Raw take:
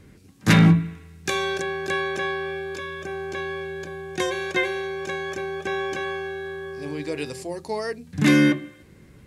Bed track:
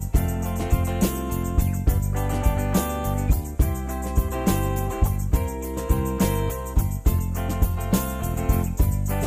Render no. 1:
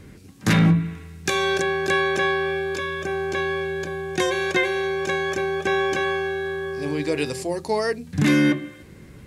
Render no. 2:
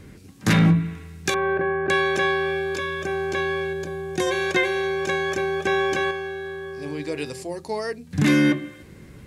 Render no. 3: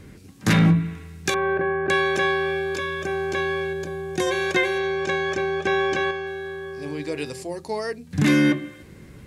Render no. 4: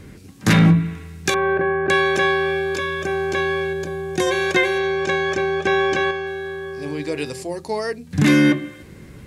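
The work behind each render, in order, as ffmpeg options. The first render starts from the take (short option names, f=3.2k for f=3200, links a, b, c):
-af "acontrast=36,alimiter=limit=-10.5dB:level=0:latency=1:release=293"
-filter_complex "[0:a]asettb=1/sr,asplit=3[a][b][c];[a]atrim=end=1.344[d];[b]atrim=start=1.34:end=1.9,asetpts=PTS-STARTPTS,afade=t=in:d=0.004:c=qsin,afade=t=out:st=0.556:d=0.004:c=qsin,lowpass=f=1.8k:w=0.5412,lowpass=f=1.8k:w=1.3066[e];[c]atrim=start=1.896[f];[d][e]acrossfade=d=0.004:c1=hsin:c2=qsin[g];[g][f]acrossfade=d=0.004:c1=qsin:c2=hsin,asettb=1/sr,asplit=3[h][i][j];[h]atrim=end=3.734[k];[i]atrim=start=3.73:end=4.27,asetpts=PTS-STARTPTS,afade=t=in:d=0.004:c=qsin,afade=t=out:st=0.536:d=0.004:c=qsin,equalizer=f=2.1k:t=o:w=2.7:g=-5.5[l];[j]atrim=start=4.266[m];[k][l]acrossfade=d=0.004:c1=hsin:c2=qsin[n];[n][m]acrossfade=d=0.004:c1=qsin:c2=hsin,asplit=3[o][p][q];[o]atrim=end=6.112[r];[p]atrim=start=6.108:end=8.112,asetpts=PTS-STARTPTS,volume=-5dB[s];[q]atrim=start=8.108[t];[r][s]acrossfade=d=0.004:c1=hsin:c2=hsin[u];[u][t]acrossfade=d=0.004:c1=hsin:c2=hsin"
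-filter_complex "[0:a]asettb=1/sr,asplit=3[a][b][c];[a]atrim=end=4.784[d];[b]atrim=start=4.78:end=6.27,asetpts=PTS-STARTPTS,afade=t=in:d=0.004:c=qsin,afade=t=out:st=1.486:d=0.004:c=qsin,lowpass=6.5k[e];[c]atrim=start=6.266[f];[d][e]acrossfade=d=0.004:c1=hsin:c2=qsin[g];[g][f]acrossfade=d=0.004:c1=qsin:c2=hsin"
-af "volume=3.5dB"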